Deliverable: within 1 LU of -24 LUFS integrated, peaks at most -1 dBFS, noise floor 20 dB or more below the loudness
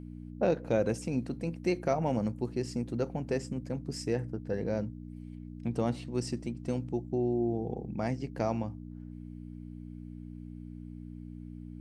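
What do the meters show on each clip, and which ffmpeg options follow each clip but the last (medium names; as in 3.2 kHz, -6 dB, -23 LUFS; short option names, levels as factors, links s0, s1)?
hum 60 Hz; highest harmonic 300 Hz; hum level -41 dBFS; loudness -33.0 LUFS; peak level -15.5 dBFS; loudness target -24.0 LUFS
-> -af "bandreject=f=60:t=h:w=4,bandreject=f=120:t=h:w=4,bandreject=f=180:t=h:w=4,bandreject=f=240:t=h:w=4,bandreject=f=300:t=h:w=4"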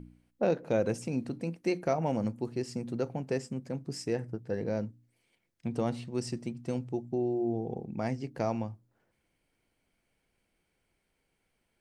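hum not found; loudness -34.0 LUFS; peak level -16.0 dBFS; loudness target -24.0 LUFS
-> -af "volume=3.16"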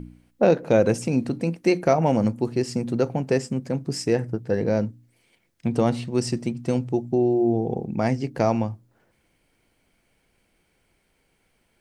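loudness -24.0 LUFS; peak level -6.0 dBFS; noise floor -68 dBFS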